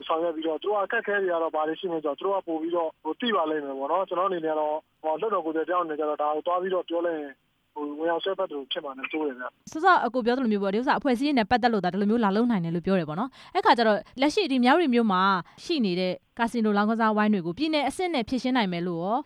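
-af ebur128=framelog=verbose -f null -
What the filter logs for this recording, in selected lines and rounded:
Integrated loudness:
  I:         -25.7 LUFS
  Threshold: -35.8 LUFS
Loudness range:
  LRA:         5.0 LU
  Threshold: -45.7 LUFS
  LRA low:   -28.6 LUFS
  LRA high:  -23.6 LUFS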